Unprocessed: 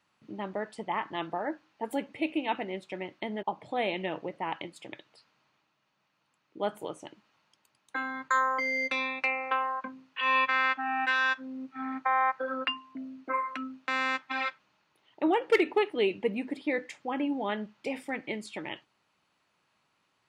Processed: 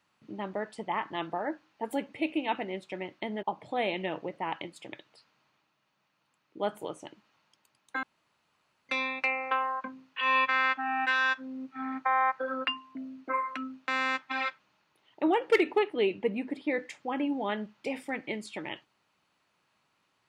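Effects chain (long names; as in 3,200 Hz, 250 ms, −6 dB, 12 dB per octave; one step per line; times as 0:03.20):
0:08.03–0:08.89: fill with room tone
0:15.79–0:16.79: high-shelf EQ 4,200 Hz −6 dB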